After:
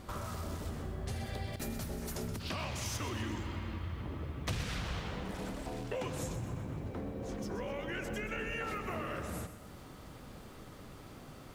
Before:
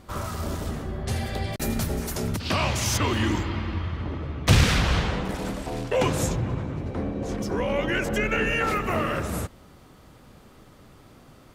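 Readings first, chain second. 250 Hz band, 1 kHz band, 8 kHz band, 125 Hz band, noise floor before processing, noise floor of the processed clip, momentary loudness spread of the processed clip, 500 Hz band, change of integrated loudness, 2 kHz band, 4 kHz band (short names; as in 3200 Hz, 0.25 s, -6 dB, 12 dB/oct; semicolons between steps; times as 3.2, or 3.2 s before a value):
-12.5 dB, -13.0 dB, -13.0 dB, -13.0 dB, -52 dBFS, -51 dBFS, 14 LU, -13.0 dB, -13.5 dB, -14.0 dB, -14.0 dB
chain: compressor 3:1, threshold -41 dBFS, peak gain reduction 20.5 dB; lo-fi delay 0.126 s, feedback 55%, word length 10-bit, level -10.5 dB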